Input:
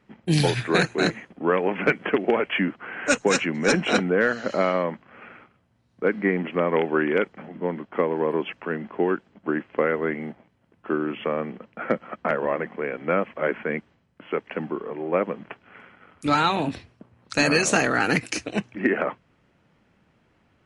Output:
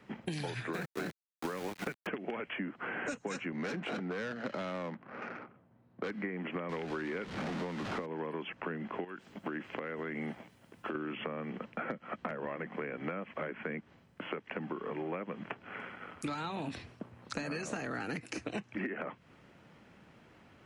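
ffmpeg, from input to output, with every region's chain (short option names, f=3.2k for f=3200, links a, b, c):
-filter_complex "[0:a]asettb=1/sr,asplit=3[a][b][c];[a]atrim=end=0.734[d];[b]atrim=start=0.73:end=2.07,asetpts=PTS-STARTPTS,afade=t=in:d=0.004:c=qsin,afade=t=out:st=1.336:d=0.004:c=qsin,lowpass=2.4k,aeval=exprs='val(0)*gte(abs(val(0)),0.0422)':c=same,agate=range=-10dB:threshold=-30dB:ratio=16:release=100:detection=peak[e];[c]atrim=start=2.066[f];[d][e]acrossfade=d=0.004:c1=hsin:c2=qsin[g];[g][f]acrossfade=d=0.004:c1=qsin:c2=hsin,asettb=1/sr,asplit=3[h][i][j];[h]atrim=end=3.524[k];[i]atrim=start=3.52:end=6.11,asetpts=PTS-STARTPTS,afade=t=in:d=0.004:c=qsin,afade=t=out:st=2.586:d=0.004:c=qsin,adynamicsmooth=sensitivity=5:basefreq=1.5k,volume=18dB,asoftclip=hard,volume=-18dB,highpass=110,lowpass=6k[l];[j]atrim=start=6.106[m];[k][l]acrossfade=d=0.004:c1=hsin:c2=qsin[n];[n][m]acrossfade=d=0.004:c1=qsin:c2=hsin,asettb=1/sr,asplit=3[o][p][q];[o]atrim=end=6.694[r];[p]atrim=start=6.69:end=8.06,asetpts=PTS-STARTPTS,afade=t=in:d=0.004:c=qsin,afade=t=out:st=1.366:d=0.004:c=qsin,aeval=exprs='val(0)+0.5*0.0376*sgn(val(0))':c=same,lowpass=4.6k[s];[q]atrim=start=8.056[t];[r][s]acrossfade=d=0.004:c1=hsin:c2=qsin[u];[u][t]acrossfade=d=0.004:c1=qsin:c2=hsin,asettb=1/sr,asplit=3[v][w][x];[v]atrim=end=9.044[y];[w]atrim=start=9.04:end=10.95,asetpts=PTS-STARTPTS,afade=t=in:d=0.004:c=qsin,afade=t=out:st=1.906:d=0.004:c=qsin,highshelf=f=3.5k:g=11.5,acompressor=threshold=-32dB:ratio=5:attack=3.2:release=140:knee=1:detection=peak[z];[x]atrim=start=10.946[aa];[y][z]acrossfade=d=0.004:c1=hsin:c2=qsin[ab];[ab][aa]acrossfade=d=0.004:c1=qsin:c2=hsin,acompressor=threshold=-32dB:ratio=6,lowshelf=f=73:g=-9,acrossover=split=240|910|1900[ac][ad][ae][af];[ac]acompressor=threshold=-46dB:ratio=4[ag];[ad]acompressor=threshold=-47dB:ratio=4[ah];[ae]acompressor=threshold=-50dB:ratio=4[ai];[af]acompressor=threshold=-53dB:ratio=4[aj];[ag][ah][ai][aj]amix=inputs=4:normalize=0,volume=5dB"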